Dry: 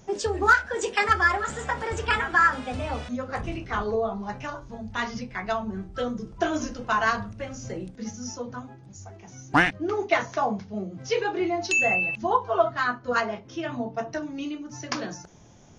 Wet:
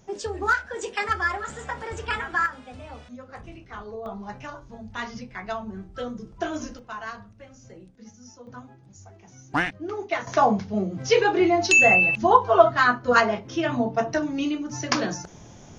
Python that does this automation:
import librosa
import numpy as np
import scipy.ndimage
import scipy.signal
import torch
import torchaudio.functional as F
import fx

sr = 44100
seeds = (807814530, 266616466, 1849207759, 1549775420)

y = fx.gain(x, sr, db=fx.steps((0.0, -4.0), (2.46, -10.5), (4.06, -3.5), (6.79, -12.0), (8.47, -4.5), (10.27, 6.5)))